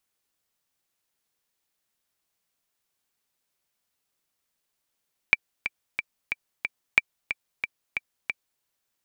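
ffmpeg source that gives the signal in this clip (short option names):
-f lavfi -i "aevalsrc='pow(10,(-3-10.5*gte(mod(t,5*60/182),60/182))/20)*sin(2*PI*2340*mod(t,60/182))*exp(-6.91*mod(t,60/182)/0.03)':d=3.29:s=44100"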